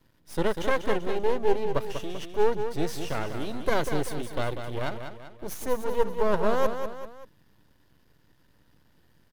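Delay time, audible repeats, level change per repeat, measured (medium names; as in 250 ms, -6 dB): 194 ms, 3, -6.5 dB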